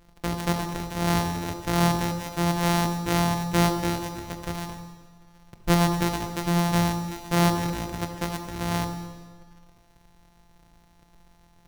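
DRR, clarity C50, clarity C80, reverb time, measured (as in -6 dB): 4.5 dB, 6.5 dB, 7.5 dB, 1.5 s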